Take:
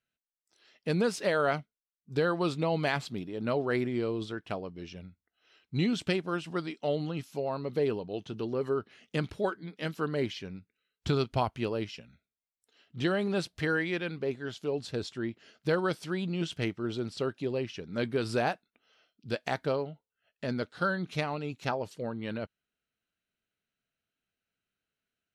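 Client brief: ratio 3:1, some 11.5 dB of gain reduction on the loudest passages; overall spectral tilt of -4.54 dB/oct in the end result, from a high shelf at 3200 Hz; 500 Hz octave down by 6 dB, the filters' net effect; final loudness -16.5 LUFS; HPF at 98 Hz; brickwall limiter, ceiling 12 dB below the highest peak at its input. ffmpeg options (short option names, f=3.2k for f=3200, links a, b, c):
-af "highpass=98,equalizer=f=500:t=o:g=-8,highshelf=f=3.2k:g=8.5,acompressor=threshold=-41dB:ratio=3,volume=27.5dB,alimiter=limit=-4.5dB:level=0:latency=1"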